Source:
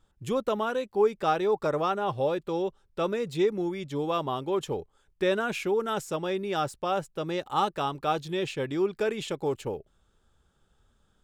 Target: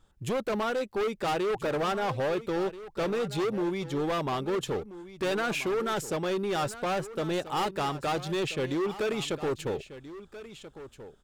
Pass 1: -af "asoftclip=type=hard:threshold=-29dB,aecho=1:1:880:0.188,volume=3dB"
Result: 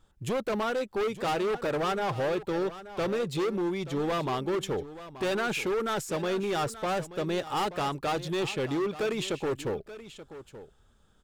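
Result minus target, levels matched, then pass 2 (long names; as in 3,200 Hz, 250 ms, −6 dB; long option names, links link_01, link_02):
echo 453 ms early
-af "asoftclip=type=hard:threshold=-29dB,aecho=1:1:1333:0.188,volume=3dB"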